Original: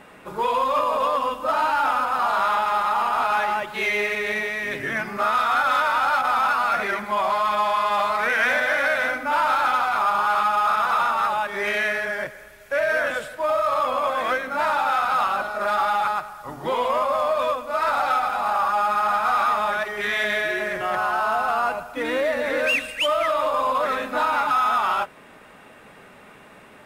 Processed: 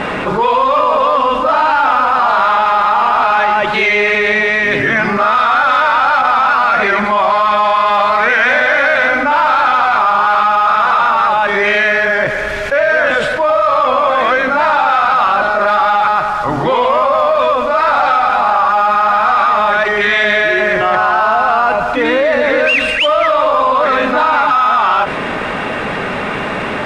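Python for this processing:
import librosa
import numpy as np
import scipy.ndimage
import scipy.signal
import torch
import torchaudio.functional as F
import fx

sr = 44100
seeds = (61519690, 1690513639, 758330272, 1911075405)

y = scipy.signal.sosfilt(scipy.signal.butter(2, 4500.0, 'lowpass', fs=sr, output='sos'), x)
y = fx.env_flatten(y, sr, amount_pct=70)
y = F.gain(torch.from_numpy(y), 8.0).numpy()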